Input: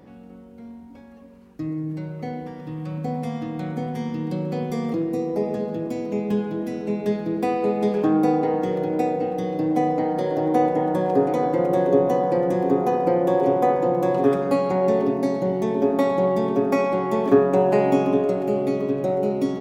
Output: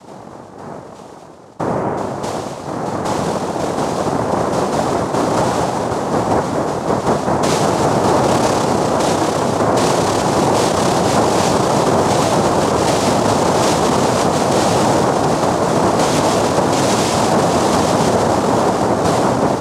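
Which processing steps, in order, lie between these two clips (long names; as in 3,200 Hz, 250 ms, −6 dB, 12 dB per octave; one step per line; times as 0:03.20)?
0:04.97–0:05.86: comb filter 1.7 ms, depth 62%
cochlear-implant simulation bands 2
boost into a limiter +13 dB
level −4 dB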